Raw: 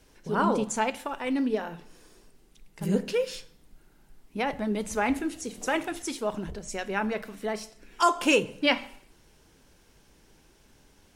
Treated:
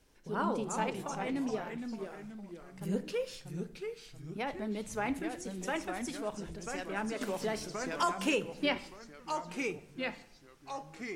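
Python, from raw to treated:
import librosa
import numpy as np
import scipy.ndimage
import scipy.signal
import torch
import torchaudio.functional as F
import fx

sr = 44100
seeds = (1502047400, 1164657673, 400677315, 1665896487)

y = fx.echo_pitch(x, sr, ms=295, semitones=-2, count=3, db_per_echo=-6.0)
y = fx.band_squash(y, sr, depth_pct=70, at=(7.21, 8.76))
y = y * librosa.db_to_amplitude(-8.0)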